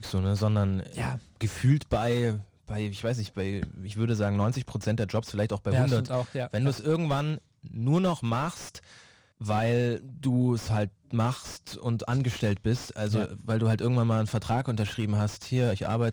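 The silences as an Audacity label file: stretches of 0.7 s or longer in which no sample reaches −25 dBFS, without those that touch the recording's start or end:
8.480000	9.490000	silence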